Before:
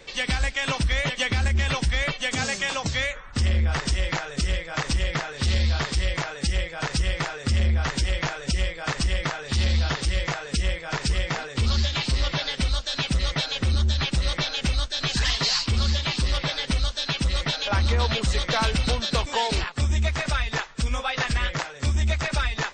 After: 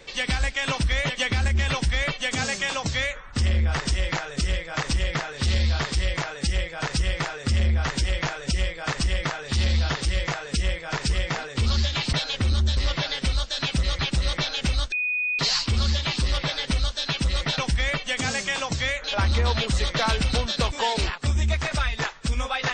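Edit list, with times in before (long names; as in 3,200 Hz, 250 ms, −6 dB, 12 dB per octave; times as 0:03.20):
0:01.72–0:03.18: duplicate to 0:17.58
0:13.35–0:13.99: move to 0:12.13
0:14.92–0:15.39: beep over 2,480 Hz −22.5 dBFS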